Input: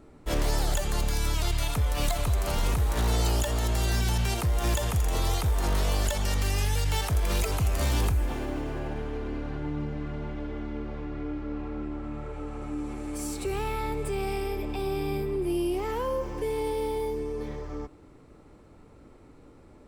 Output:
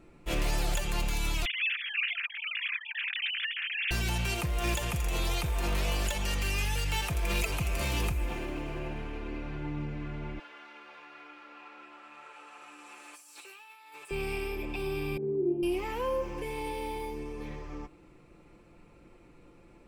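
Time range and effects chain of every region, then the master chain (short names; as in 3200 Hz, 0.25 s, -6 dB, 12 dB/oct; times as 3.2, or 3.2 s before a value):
1.45–3.91 sine-wave speech + Chebyshev high-pass 1700 Hz, order 4 + compressor 2:1, threshold -33 dBFS
10.39–14.11 HPF 1100 Hz + bell 2200 Hz -7 dB 0.27 oct + negative-ratio compressor -47 dBFS
15.17–15.63 flutter echo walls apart 9.2 m, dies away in 0.7 s + careless resampling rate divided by 4×, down filtered, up zero stuff + Butterworth band-pass 300 Hz, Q 0.84
whole clip: bell 2500 Hz +10.5 dB 0.41 oct; notch 810 Hz, Q 27; comb 5.8 ms, depth 48%; gain -4.5 dB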